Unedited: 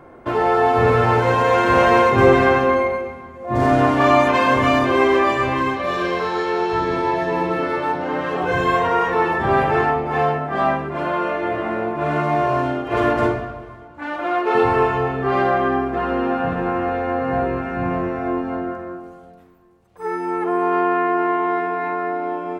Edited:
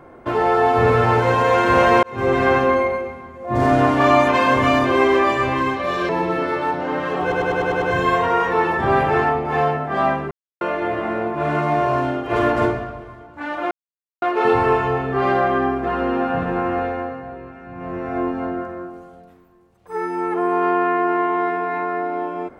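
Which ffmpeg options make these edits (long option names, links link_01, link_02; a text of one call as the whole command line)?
ffmpeg -i in.wav -filter_complex "[0:a]asplit=14[link_01][link_02][link_03][link_04][link_05][link_06][link_07][link_08][link_09][link_10][link_11][link_12][link_13][link_14];[link_01]atrim=end=2.03,asetpts=PTS-STARTPTS,afade=type=out:start_time=2.026:duration=0.004:curve=hsin[link_15];[link_02]atrim=start=2.03:end=6.092,asetpts=PTS-STARTPTS,afade=type=in:duration=0.52[link_16];[link_03]atrim=start=7.298:end=8.532[link_17];[link_04]atrim=start=8.428:end=8.532[link_18];[link_05]atrim=start=8.428:end=8.532[link_19];[link_06]atrim=start=8.428:end=8.532[link_20];[link_07]atrim=start=8.428:end=8.532[link_21];[link_08]atrim=start=8.428:end=8.532[link_22];[link_09]atrim=start=8.428:end=10.92,asetpts=PTS-STARTPTS,afade=type=out:start_time=2.488:duration=0.004:curve=hsin[link_23];[link_10]atrim=start=10.92:end=11.22,asetpts=PTS-STARTPTS,volume=0[link_24];[link_11]atrim=start=11.22:end=14.32,asetpts=PTS-STARTPTS,afade=type=in:duration=0.004:curve=hsin,afade=type=out:start_time=3.096:duration=0.004:curve=hsin,apad=pad_dur=0.51[link_25];[link_12]atrim=start=14.32:end=17.33,asetpts=PTS-STARTPTS,afade=type=in:duration=0.004:curve=hsin,afade=type=out:start_time=2.6:duration=0.41:silence=0.211349[link_26];[link_13]atrim=start=17.33:end=17.86,asetpts=PTS-STARTPTS,volume=-13.5dB[link_27];[link_14]atrim=start=17.86,asetpts=PTS-STARTPTS,afade=type=in:duration=0.41:silence=0.211349[link_28];[link_15][link_16]concat=n=2:v=0:a=1[link_29];[link_29][link_17]acrossfade=duration=0.004:curve1=hsin:curve2=hsin[link_30];[link_30][link_18]acrossfade=duration=0.004:curve1=hsin:curve2=hsin[link_31];[link_31][link_19]acrossfade=duration=0.004:curve1=hsin:curve2=hsin[link_32];[link_32][link_20]acrossfade=duration=0.004:curve1=hsin:curve2=hsin[link_33];[link_33][link_21]acrossfade=duration=0.004:curve1=hsin:curve2=hsin[link_34];[link_34][link_22]acrossfade=duration=0.004:curve1=hsin:curve2=hsin[link_35];[link_23][link_24][link_25][link_26][link_27][link_28]concat=n=6:v=0:a=1[link_36];[link_35][link_36]acrossfade=duration=0.004:curve1=hsin:curve2=hsin" out.wav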